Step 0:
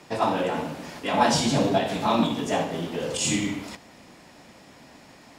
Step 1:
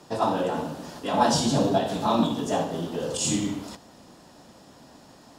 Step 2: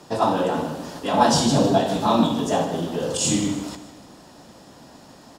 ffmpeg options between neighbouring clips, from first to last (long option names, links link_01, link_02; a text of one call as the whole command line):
ffmpeg -i in.wav -af "equalizer=frequency=2200:width_type=o:width=0.57:gain=-12.5" out.wav
ffmpeg -i in.wav -af "aecho=1:1:155|310|465|620:0.2|0.0898|0.0404|0.0182,volume=4dB" out.wav